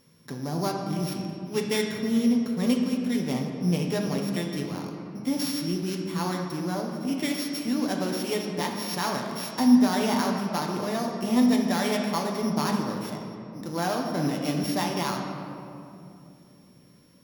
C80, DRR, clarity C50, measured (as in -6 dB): 4.5 dB, 0.5 dB, 3.0 dB